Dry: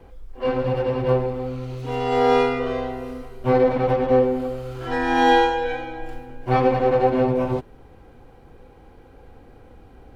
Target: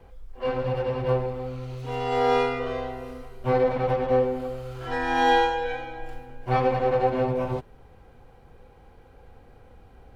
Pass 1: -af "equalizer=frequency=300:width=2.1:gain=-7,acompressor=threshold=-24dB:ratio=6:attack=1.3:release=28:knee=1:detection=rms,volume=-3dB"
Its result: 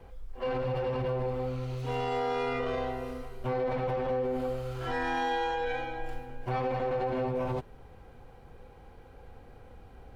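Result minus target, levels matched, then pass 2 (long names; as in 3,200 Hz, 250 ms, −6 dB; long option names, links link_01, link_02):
downward compressor: peak gain reduction +12 dB
-af "equalizer=frequency=300:width=2.1:gain=-7,volume=-3dB"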